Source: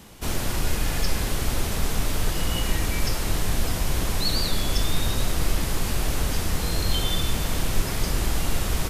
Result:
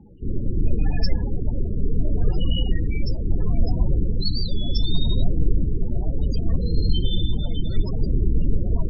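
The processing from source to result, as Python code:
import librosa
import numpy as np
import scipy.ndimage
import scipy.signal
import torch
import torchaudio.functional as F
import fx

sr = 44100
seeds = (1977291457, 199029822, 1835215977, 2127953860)

y = fx.echo_alternate(x, sr, ms=306, hz=920.0, feedback_pct=57, wet_db=-10.5)
y = fx.rotary(y, sr, hz=0.75)
y = fx.spec_topn(y, sr, count=16)
y = y * 10.0 ** (5.0 / 20.0)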